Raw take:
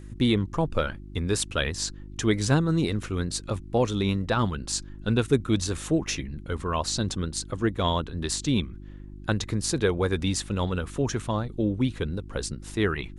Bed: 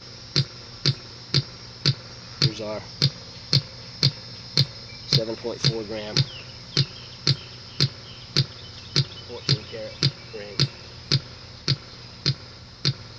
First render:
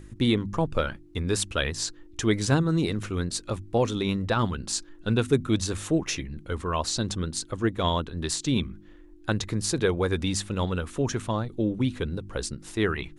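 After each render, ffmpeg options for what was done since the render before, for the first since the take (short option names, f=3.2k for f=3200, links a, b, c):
-af "bandreject=f=50:t=h:w=4,bandreject=f=100:t=h:w=4,bandreject=f=150:t=h:w=4,bandreject=f=200:t=h:w=4,bandreject=f=250:t=h:w=4"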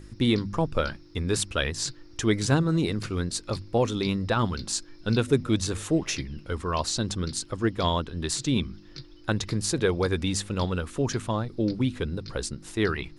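-filter_complex "[1:a]volume=-21.5dB[a];[0:a][a]amix=inputs=2:normalize=0"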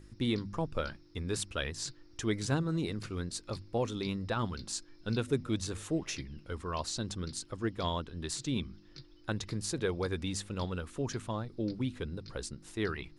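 -af "volume=-8.5dB"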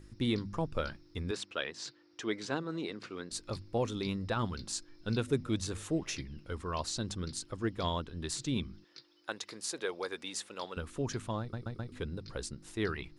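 -filter_complex "[0:a]asettb=1/sr,asplit=3[a][b][c];[a]atrim=end=1.314[d];[b]atrim=start=1.31:end=3.31,asetpts=PTS-STARTPTS,afade=t=in:d=0.004:c=qsin,afade=t=out:st=1.996:d=0.004:c=qsin,highpass=300,lowpass=4.9k[e];[c]atrim=start=3.306[f];[d][e]acrossfade=d=0.004:c1=hsin:c2=qsin[g];[g][f]acrossfade=d=0.004:c1=qsin:c2=hsin,asettb=1/sr,asplit=3[h][i][j];[h]atrim=end=8.844[k];[i]atrim=start=8.84:end=10.77,asetpts=PTS-STARTPTS,afade=t=in:d=0.004:c=qsin,afade=t=out:st=1.926:d=0.004:c=qsin,highpass=480[l];[j]atrim=start=10.766[m];[k][l]acrossfade=d=0.004:c1=hsin:c2=qsin[n];[n][m]acrossfade=d=0.004:c1=qsin:c2=hsin,asplit=5[o][p][q][r][s];[o]atrim=end=11.532[t];[p]atrim=start=11.398:end=11.532[u];[q]atrim=start=11.398:end=11.532[v];[r]atrim=start=11.398:end=11.532[w];[s]atrim=start=11.918[x];[t][u]acrossfade=d=0.004:c1=hsin:c2=hsin[y];[y][v]acrossfade=d=0.004:c1=hsin:c2=hsin[z];[z][w]acrossfade=d=0.004:c1=hsin:c2=hsin[aa];[aa][x]acrossfade=d=0.004:c1=hsin:c2=hsin"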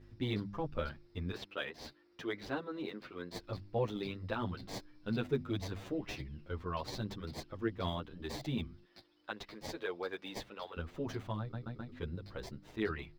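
-filter_complex "[0:a]acrossover=split=4800[a][b];[b]acrusher=samples=32:mix=1:aa=0.000001[c];[a][c]amix=inputs=2:normalize=0,asplit=2[d][e];[e]adelay=8.9,afreqshift=0.91[f];[d][f]amix=inputs=2:normalize=1"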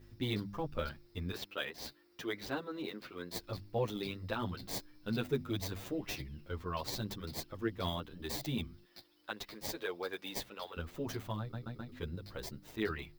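-af "aemphasis=mode=production:type=50fm"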